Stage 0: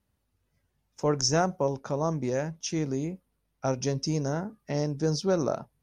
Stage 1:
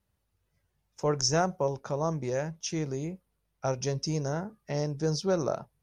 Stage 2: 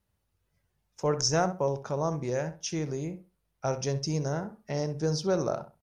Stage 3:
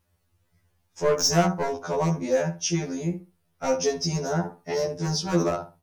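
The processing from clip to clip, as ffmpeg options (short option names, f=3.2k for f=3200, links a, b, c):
-af "equalizer=f=260:t=o:w=0.38:g=-8,volume=-1dB"
-filter_complex "[0:a]asplit=2[a][b];[b]adelay=65,lowpass=f=2.4k:p=1,volume=-11dB,asplit=2[c][d];[d]adelay=65,lowpass=f=2.4k:p=1,volume=0.23,asplit=2[e][f];[f]adelay=65,lowpass=f=2.4k:p=1,volume=0.23[g];[a][c][e][g]amix=inputs=4:normalize=0"
-af "volume=22.5dB,asoftclip=hard,volume=-22.5dB,afftfilt=real='re*2*eq(mod(b,4),0)':imag='im*2*eq(mod(b,4),0)':win_size=2048:overlap=0.75,volume=9dB"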